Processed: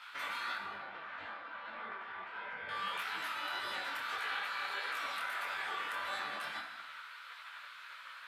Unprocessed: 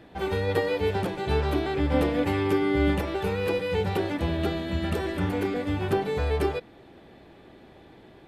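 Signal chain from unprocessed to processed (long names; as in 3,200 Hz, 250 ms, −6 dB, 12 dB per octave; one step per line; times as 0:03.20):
notch filter 1,100 Hz, Q 8.8
gate on every frequency bin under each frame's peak −20 dB weak
high-pass filter 430 Hz 6 dB per octave
parametric band 1,400 Hz +13 dB 1.1 octaves
downward compressor, threshold −40 dBFS, peak gain reduction 13.5 dB
brickwall limiter −38 dBFS, peak gain reduction 10 dB
0:00.55–0:02.69: head-to-tape spacing loss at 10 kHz 40 dB
reverb whose tail is shaped and stops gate 350 ms falling, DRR 3 dB
micro pitch shift up and down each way 56 cents
level +10 dB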